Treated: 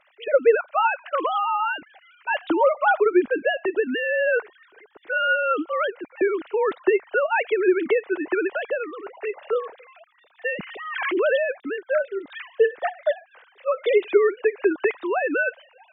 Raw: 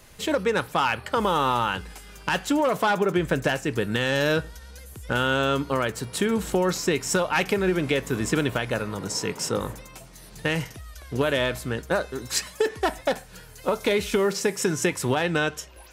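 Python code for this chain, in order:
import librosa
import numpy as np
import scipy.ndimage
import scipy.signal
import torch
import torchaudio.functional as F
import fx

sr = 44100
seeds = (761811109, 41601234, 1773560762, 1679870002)

y = fx.sine_speech(x, sr)
y = fx.pre_swell(y, sr, db_per_s=39.0, at=(10.63, 11.48))
y = y * 10.0 ** (2.0 / 20.0)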